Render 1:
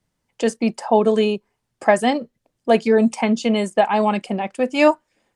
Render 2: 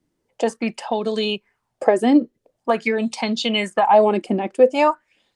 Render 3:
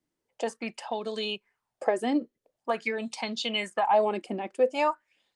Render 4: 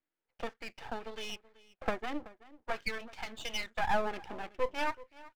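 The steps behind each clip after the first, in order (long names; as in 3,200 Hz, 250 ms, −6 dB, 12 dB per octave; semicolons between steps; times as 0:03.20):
downward compressor, threshold −15 dBFS, peak gain reduction 7 dB; auto-filter bell 0.46 Hz 300–4,300 Hz +17 dB; level −3 dB
low-shelf EQ 400 Hz −8 dB; level −7 dB
loudspeaker in its box 400–3,000 Hz, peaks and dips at 400 Hz −4 dB, 590 Hz −5 dB, 1,100 Hz −7 dB, 1,500 Hz +5 dB; slap from a distant wall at 65 metres, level −19 dB; half-wave rectification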